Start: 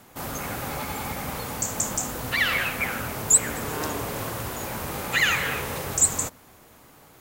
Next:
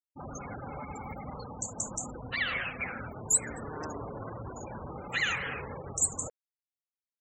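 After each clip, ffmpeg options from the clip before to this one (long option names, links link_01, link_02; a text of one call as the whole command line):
ffmpeg -i in.wav -af "afftfilt=real='re*gte(hypot(re,im),0.0447)':imag='im*gte(hypot(re,im),0.0447)':win_size=1024:overlap=0.75,areverse,acompressor=mode=upward:threshold=-28dB:ratio=2.5,areverse,volume=-8dB" out.wav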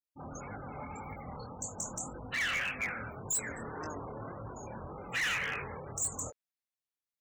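ffmpeg -i in.wav -af "adynamicequalizer=threshold=0.00562:dfrequency=2200:dqfactor=0.73:tfrequency=2200:tqfactor=0.73:attack=5:release=100:ratio=0.375:range=2.5:mode=boostabove:tftype=bell,flanger=delay=19.5:depth=7.3:speed=1.8,asoftclip=type=hard:threshold=-29dB" out.wav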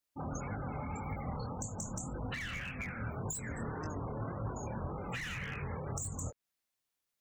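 ffmpeg -i in.wav -filter_complex "[0:a]acrossover=split=220[link_01][link_02];[link_02]acompressor=threshold=-48dB:ratio=10[link_03];[link_01][link_03]amix=inputs=2:normalize=0,volume=7.5dB" out.wav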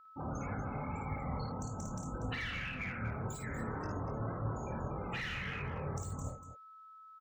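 ffmpeg -i in.wav -af "highshelf=frequency=5700:width_type=q:width=1.5:gain=-8.5,aeval=exprs='val(0)+0.00178*sin(2*PI*1300*n/s)':channel_layout=same,aecho=1:1:54|240:0.631|0.266,volume=-1.5dB" out.wav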